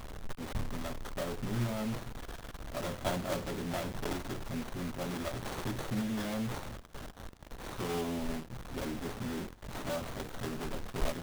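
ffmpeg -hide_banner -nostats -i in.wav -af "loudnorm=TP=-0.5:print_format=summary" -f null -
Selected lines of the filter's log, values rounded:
Input Integrated:    -38.4 LUFS
Input True Peak:     -19.4 dBTP
Input LRA:             2.0 LU
Input Threshold:     -48.6 LUFS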